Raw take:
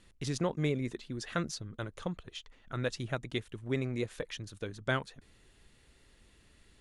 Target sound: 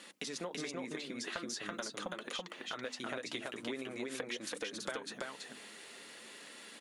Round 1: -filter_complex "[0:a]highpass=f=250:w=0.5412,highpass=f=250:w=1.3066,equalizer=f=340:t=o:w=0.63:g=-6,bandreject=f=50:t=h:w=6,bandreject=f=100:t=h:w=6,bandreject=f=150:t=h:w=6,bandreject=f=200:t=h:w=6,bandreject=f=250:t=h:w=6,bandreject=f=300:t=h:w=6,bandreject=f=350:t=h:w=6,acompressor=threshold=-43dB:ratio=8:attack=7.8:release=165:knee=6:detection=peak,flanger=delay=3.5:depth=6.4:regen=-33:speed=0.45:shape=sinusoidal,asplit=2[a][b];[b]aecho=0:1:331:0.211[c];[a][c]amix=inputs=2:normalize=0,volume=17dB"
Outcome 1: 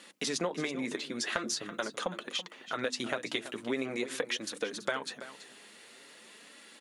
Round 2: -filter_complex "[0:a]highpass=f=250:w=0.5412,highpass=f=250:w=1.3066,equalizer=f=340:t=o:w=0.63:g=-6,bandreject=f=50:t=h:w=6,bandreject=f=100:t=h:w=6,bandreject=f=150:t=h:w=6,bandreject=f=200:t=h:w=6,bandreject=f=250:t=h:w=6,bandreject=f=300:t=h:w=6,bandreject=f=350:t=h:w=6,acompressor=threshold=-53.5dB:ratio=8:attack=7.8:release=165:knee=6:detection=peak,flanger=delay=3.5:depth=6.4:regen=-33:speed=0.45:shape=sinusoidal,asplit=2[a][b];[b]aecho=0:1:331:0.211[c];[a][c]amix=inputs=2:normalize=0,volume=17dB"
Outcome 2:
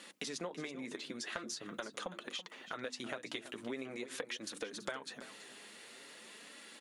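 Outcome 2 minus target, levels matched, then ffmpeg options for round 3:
echo-to-direct -11.5 dB
-filter_complex "[0:a]highpass=f=250:w=0.5412,highpass=f=250:w=1.3066,equalizer=f=340:t=o:w=0.63:g=-6,bandreject=f=50:t=h:w=6,bandreject=f=100:t=h:w=6,bandreject=f=150:t=h:w=6,bandreject=f=200:t=h:w=6,bandreject=f=250:t=h:w=6,bandreject=f=300:t=h:w=6,bandreject=f=350:t=h:w=6,acompressor=threshold=-53.5dB:ratio=8:attack=7.8:release=165:knee=6:detection=peak,flanger=delay=3.5:depth=6.4:regen=-33:speed=0.45:shape=sinusoidal,asplit=2[a][b];[b]aecho=0:1:331:0.794[c];[a][c]amix=inputs=2:normalize=0,volume=17dB"

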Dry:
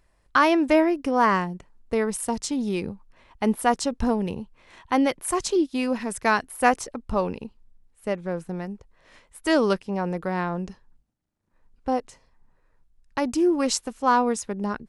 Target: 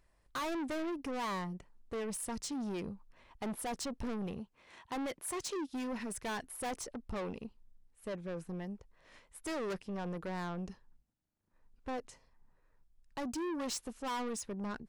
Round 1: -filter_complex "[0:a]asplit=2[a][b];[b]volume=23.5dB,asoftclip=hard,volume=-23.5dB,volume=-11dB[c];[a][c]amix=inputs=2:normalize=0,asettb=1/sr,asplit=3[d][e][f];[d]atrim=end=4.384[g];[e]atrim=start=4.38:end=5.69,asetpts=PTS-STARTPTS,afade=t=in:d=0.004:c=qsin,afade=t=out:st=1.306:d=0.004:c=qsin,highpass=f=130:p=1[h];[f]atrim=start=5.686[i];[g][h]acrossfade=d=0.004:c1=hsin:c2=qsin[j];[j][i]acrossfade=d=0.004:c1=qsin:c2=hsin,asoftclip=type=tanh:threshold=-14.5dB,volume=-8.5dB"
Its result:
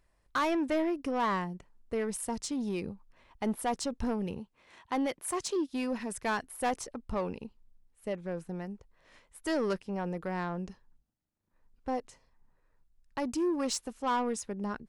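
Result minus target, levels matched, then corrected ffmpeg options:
soft clip: distortion -9 dB
-filter_complex "[0:a]asplit=2[a][b];[b]volume=23.5dB,asoftclip=hard,volume=-23.5dB,volume=-11dB[c];[a][c]amix=inputs=2:normalize=0,asettb=1/sr,asplit=3[d][e][f];[d]atrim=end=4.384[g];[e]atrim=start=4.38:end=5.69,asetpts=PTS-STARTPTS,afade=t=in:d=0.004:c=qsin,afade=t=out:st=1.306:d=0.004:c=qsin,highpass=f=130:p=1[h];[f]atrim=start=5.686[i];[g][h]acrossfade=d=0.004:c1=hsin:c2=qsin[j];[j][i]acrossfade=d=0.004:c1=qsin:c2=hsin,asoftclip=type=tanh:threshold=-26.5dB,volume=-8.5dB"

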